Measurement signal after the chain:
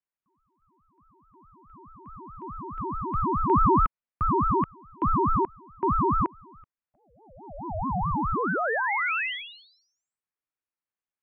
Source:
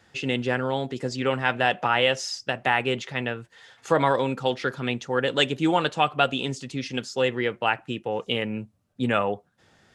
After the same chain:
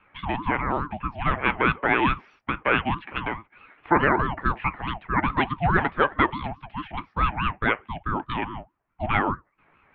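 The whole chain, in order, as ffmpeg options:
-af "highpass=f=270:t=q:w=0.5412,highpass=f=270:t=q:w=1.307,lowpass=f=2.2k:t=q:w=0.5176,lowpass=f=2.2k:t=q:w=0.7071,lowpass=f=2.2k:t=q:w=1.932,afreqshift=110,aeval=exprs='val(0)*sin(2*PI*470*n/s+470*0.45/4.7*sin(2*PI*4.7*n/s))':c=same,volume=4.5dB"

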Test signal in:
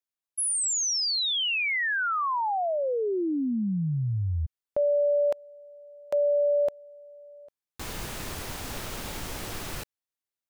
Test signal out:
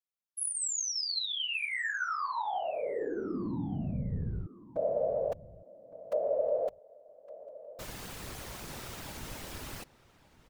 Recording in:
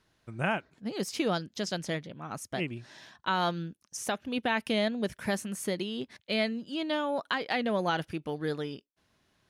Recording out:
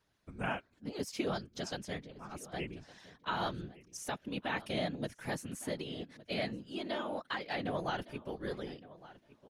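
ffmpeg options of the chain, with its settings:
-filter_complex "[0:a]afftfilt=real='hypot(re,im)*cos(2*PI*random(0))':imag='hypot(re,im)*sin(2*PI*random(1))':win_size=512:overlap=0.75,asplit=2[a][b];[b]adelay=1162,lowpass=f=3.4k:p=1,volume=-18dB,asplit=2[c][d];[d]adelay=1162,lowpass=f=3.4k:p=1,volume=0.16[e];[a][c][e]amix=inputs=3:normalize=0,volume=-1dB"

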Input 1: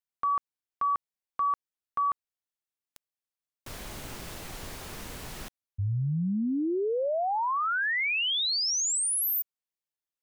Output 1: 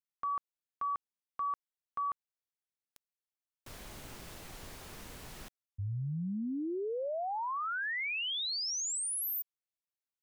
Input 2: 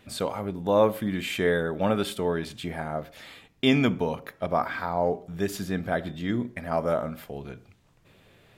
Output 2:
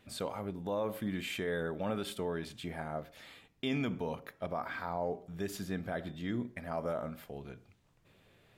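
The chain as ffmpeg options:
-af "alimiter=limit=-17.5dB:level=0:latency=1:release=69,volume=-7.5dB"

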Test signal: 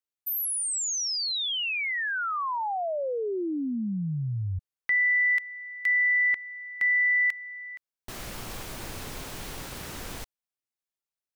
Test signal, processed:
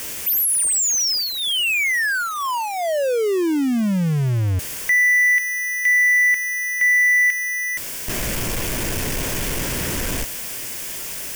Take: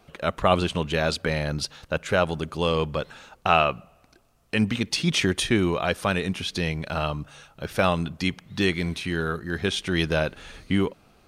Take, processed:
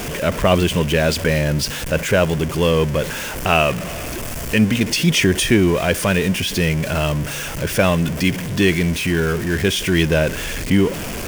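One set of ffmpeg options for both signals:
-af "aeval=exprs='val(0)+0.5*0.0501*sgn(val(0))':c=same,equalizer=f=800:t=o:w=0.33:g=-8,equalizer=f=1.25k:t=o:w=0.33:g=-8,equalizer=f=4k:t=o:w=0.33:g=-9,volume=6dB"

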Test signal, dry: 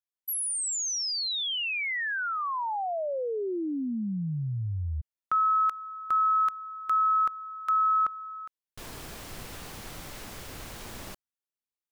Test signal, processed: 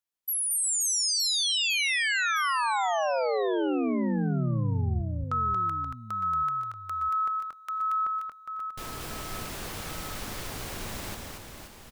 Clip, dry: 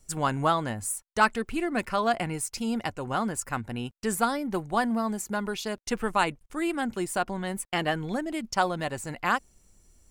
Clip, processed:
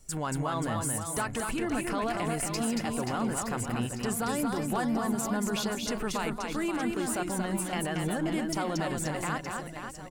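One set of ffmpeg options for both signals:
-af "acompressor=threshold=-29dB:ratio=6:attack=0.25:release=85:knee=1:detection=peak,aecho=1:1:230|529|917.7|1423|2080:0.631|0.398|0.251|0.158|0.1,volume=3dB"

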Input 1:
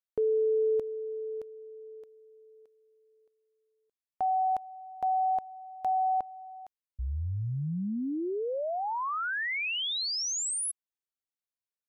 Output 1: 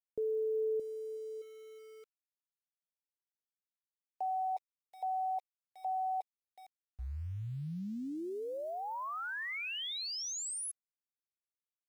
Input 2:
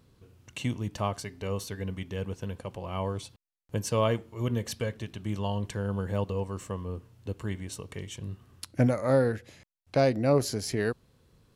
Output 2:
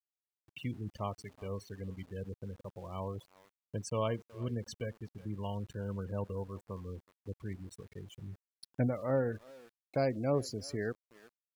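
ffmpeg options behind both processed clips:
-filter_complex "[0:a]afftfilt=real='re*gte(hypot(re,im),0.0224)':imag='im*gte(hypot(re,im),0.0224)':win_size=1024:overlap=0.75,asplit=2[a][b];[b]adelay=370,highpass=300,lowpass=3.4k,asoftclip=type=hard:threshold=-21.5dB,volume=-20dB[c];[a][c]amix=inputs=2:normalize=0,aeval=exprs='val(0)*gte(abs(val(0)),0.00355)':c=same,volume=-7.5dB"

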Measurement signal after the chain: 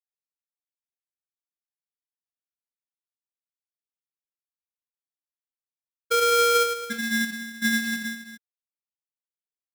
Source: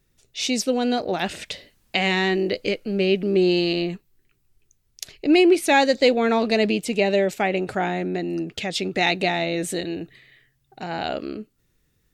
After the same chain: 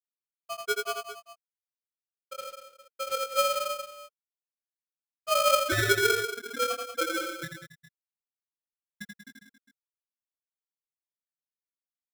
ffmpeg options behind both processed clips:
-filter_complex "[0:a]afftfilt=real='re*gte(hypot(re,im),1)':imag='im*gte(hypot(re,im),1)':win_size=1024:overlap=0.75,equalizer=f=470:t=o:w=0.33:g=11,acrossover=split=280|1100[a][b][c];[a]acompressor=threshold=-29dB:ratio=4[d];[b]acompressor=threshold=-14dB:ratio=4[e];[c]acompressor=threshold=-36dB:ratio=4[f];[d][e][f]amix=inputs=3:normalize=0,acrusher=bits=6:mode=log:mix=0:aa=0.000001,flanger=delay=18:depth=6.9:speed=0.22,lowpass=f=3.9k:t=q:w=3.5,acrossover=split=420[g][h];[g]aeval=exprs='val(0)*(1-0.5/2+0.5/2*cos(2*PI*9.7*n/s))':c=same[i];[h]aeval=exprs='val(0)*(1-0.5/2-0.5/2*cos(2*PI*9.7*n/s))':c=same[j];[i][j]amix=inputs=2:normalize=0,asuperstop=centerf=2300:order=8:qfactor=5.8,aecho=1:1:84|187|274|406:0.631|0.335|0.188|0.158,aeval=exprs='val(0)*sgn(sin(2*PI*930*n/s))':c=same,volume=-3.5dB"

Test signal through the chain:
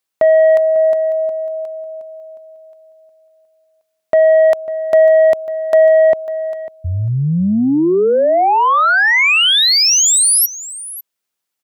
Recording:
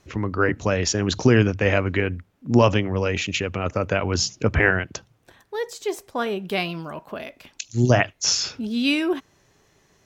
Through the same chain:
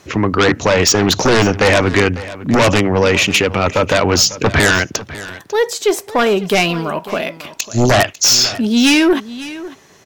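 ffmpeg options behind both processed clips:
-filter_complex "[0:a]highpass=f=190:p=1,asplit=2[a][b];[b]aeval=exprs='0.596*sin(PI/2*5.01*val(0)/0.596)':c=same,volume=-4dB[c];[a][c]amix=inputs=2:normalize=0,aecho=1:1:548:0.15,volume=-1dB"

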